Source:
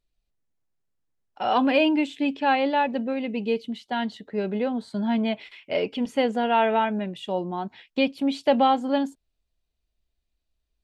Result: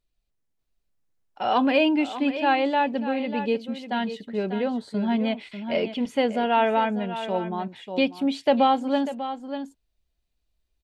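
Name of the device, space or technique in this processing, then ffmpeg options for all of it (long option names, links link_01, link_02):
ducked delay: -filter_complex "[0:a]asplit=3[link_01][link_02][link_03];[link_02]adelay=593,volume=-2.5dB[link_04];[link_03]apad=whole_len=503906[link_05];[link_04][link_05]sidechaincompress=threshold=-30dB:ratio=4:attack=10:release=1300[link_06];[link_01][link_06]amix=inputs=2:normalize=0"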